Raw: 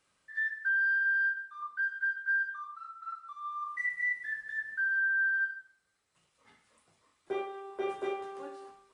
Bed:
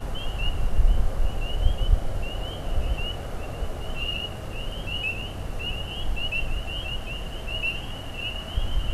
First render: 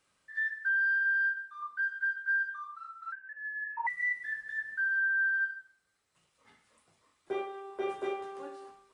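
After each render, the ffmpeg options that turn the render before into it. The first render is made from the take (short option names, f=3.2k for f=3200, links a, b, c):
-filter_complex "[0:a]asettb=1/sr,asplit=3[a][b][c];[a]atrim=end=3.124[d];[b]atrim=start=3.12:end=3.87,asetpts=PTS-STARTPTS,afade=t=in:d=0.004:c=qsin,afade=t=out:st=0.746:d=0.004:c=qsin,lowpass=f=2.5k:t=q:w=0.5098,lowpass=f=2.5k:t=q:w=0.6013,lowpass=f=2.5k:t=q:w=0.9,lowpass=f=2.5k:t=q:w=2.563,afreqshift=-2900[e];[c]atrim=start=3.866[f];[d][e]acrossfade=d=0.004:c1=hsin:c2=qsin[g];[g][f]acrossfade=d=0.004:c1=qsin:c2=hsin"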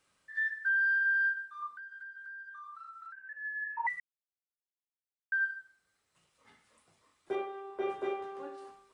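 -filter_complex "[0:a]asettb=1/sr,asplit=3[a][b][c];[a]atrim=end=1.694[d];[b]atrim=start=1.69:end=3.18,asetpts=PTS-STARTPTS,afade=t=in:d=0.004:c=qsin,afade=t=out:st=1.486:d=0.004:c=qsin,acompressor=threshold=-44dB:ratio=12:attack=3.2:release=140:knee=1:detection=peak[e];[c]atrim=start=3.176[f];[d][e]acrossfade=d=0.004:c1=hsin:c2=qsin[g];[g][f]acrossfade=d=0.004:c1=qsin:c2=hsin,asettb=1/sr,asplit=3[h][i][j];[h]atrim=end=7.354[k];[i]atrim=start=7.35:end=8.58,asetpts=PTS-STARTPTS,afade=t=in:d=0.004:c=qsin,afade=t=out:st=1.226:d=0.004:c=qsin,lowpass=f=3.3k:p=1[l];[j]atrim=start=8.576[m];[k][l]acrossfade=d=0.004:c1=hsin:c2=qsin[n];[n][m]acrossfade=d=0.004:c1=qsin:c2=hsin,asplit=3[o][p][q];[o]atrim=end=4,asetpts=PTS-STARTPTS,afade=t=out:st=3.996:d=0.004:c=hsin[r];[p]atrim=start=4:end=5.32,asetpts=PTS-STARTPTS,volume=0[s];[q]atrim=start=5.32,asetpts=PTS-STARTPTS,afade=t=in:d=0.004:c=hsin[t];[r][s][t]concat=n=3:v=0:a=1"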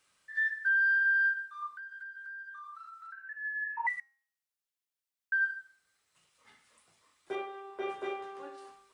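-af "tiltshelf=f=970:g=-4,bandreject=f=269.8:t=h:w=4,bandreject=f=539.6:t=h:w=4,bandreject=f=809.4:t=h:w=4,bandreject=f=1.0792k:t=h:w=4,bandreject=f=1.349k:t=h:w=4,bandreject=f=1.6188k:t=h:w=4,bandreject=f=1.8886k:t=h:w=4,bandreject=f=2.1584k:t=h:w=4,bandreject=f=2.4282k:t=h:w=4,bandreject=f=2.698k:t=h:w=4,bandreject=f=2.9678k:t=h:w=4,bandreject=f=3.2376k:t=h:w=4,bandreject=f=3.5074k:t=h:w=4,bandreject=f=3.7772k:t=h:w=4,bandreject=f=4.047k:t=h:w=4,bandreject=f=4.3168k:t=h:w=4,bandreject=f=4.5866k:t=h:w=4,bandreject=f=4.8564k:t=h:w=4,bandreject=f=5.1262k:t=h:w=4,bandreject=f=5.396k:t=h:w=4,bandreject=f=5.6658k:t=h:w=4,bandreject=f=5.9356k:t=h:w=4,bandreject=f=6.2054k:t=h:w=4,bandreject=f=6.4752k:t=h:w=4,bandreject=f=6.745k:t=h:w=4,bandreject=f=7.0148k:t=h:w=4,bandreject=f=7.2846k:t=h:w=4,bandreject=f=7.5544k:t=h:w=4,bandreject=f=7.8242k:t=h:w=4,bandreject=f=8.094k:t=h:w=4,bandreject=f=8.3638k:t=h:w=4,bandreject=f=8.6336k:t=h:w=4,bandreject=f=8.9034k:t=h:w=4,bandreject=f=9.1732k:t=h:w=4,bandreject=f=9.443k:t=h:w=4,bandreject=f=9.7128k:t=h:w=4"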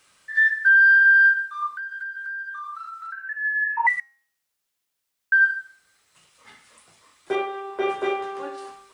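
-af "volume=12dB"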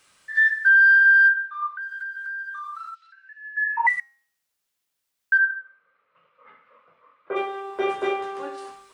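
-filter_complex "[0:a]asettb=1/sr,asplit=3[a][b][c];[a]atrim=end=1.284[d];[b]atrim=start=1.28:end=1.81,asetpts=PTS-STARTPTS,afade=t=in:d=0.004:c=qsin,afade=t=out:st=0.526:d=0.004:c=qsin,highpass=520,lowpass=2.4k[e];[c]atrim=start=1.806[f];[d][e]acrossfade=d=0.004:c1=hsin:c2=qsin[g];[g][f]acrossfade=d=0.004:c1=qsin:c2=hsin,asplit=3[h][i][j];[h]afade=t=out:st=2.94:d=0.02[k];[i]asuperpass=centerf=3600:order=4:qfactor=1.4,afade=t=in:st=2.94:d=0.02,afade=t=out:st=3.56:d=0.02[l];[j]afade=t=in:st=3.56:d=0.02[m];[k][l][m]amix=inputs=3:normalize=0,asplit=3[n][o][p];[n]afade=t=out:st=5.37:d=0.02[q];[o]highpass=230,equalizer=f=240:t=q:w=4:g=-5,equalizer=f=350:t=q:w=4:g=-10,equalizer=f=520:t=q:w=4:g=10,equalizer=f=770:t=q:w=4:g=-10,equalizer=f=1.2k:t=q:w=4:g=7,equalizer=f=1.8k:t=q:w=4:g=-7,lowpass=f=2.1k:w=0.5412,lowpass=f=2.1k:w=1.3066,afade=t=in:st=5.37:d=0.02,afade=t=out:st=7.35:d=0.02[r];[p]afade=t=in:st=7.35:d=0.02[s];[q][r][s]amix=inputs=3:normalize=0"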